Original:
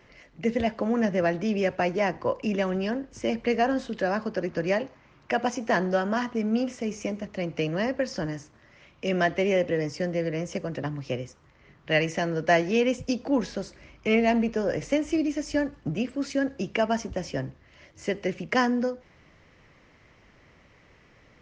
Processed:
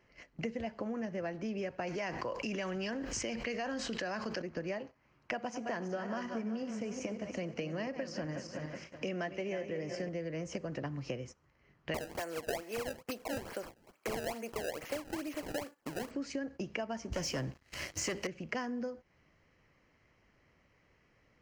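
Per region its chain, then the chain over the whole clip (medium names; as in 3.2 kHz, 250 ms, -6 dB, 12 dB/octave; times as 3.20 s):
1.87–4.42 s: tilt shelf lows -5 dB, about 1.3 kHz + level flattener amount 70%
5.33–10.09 s: backward echo that repeats 185 ms, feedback 56%, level -10 dB + high-pass 82 Hz
11.94–16.11 s: high-pass 470 Hz + decimation with a swept rate 23×, swing 160% 2.3 Hz
17.12–18.27 s: treble shelf 3.5 kHz +11 dB + waveshaping leveller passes 3
whole clip: band-stop 3.6 kHz, Q 6.8; compression 6:1, threshold -38 dBFS; gate -50 dBFS, range -14 dB; trim +2 dB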